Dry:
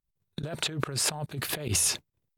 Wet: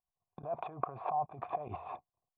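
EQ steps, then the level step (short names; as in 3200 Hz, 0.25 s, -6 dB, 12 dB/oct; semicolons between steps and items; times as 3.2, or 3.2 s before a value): vocal tract filter a; +12.5 dB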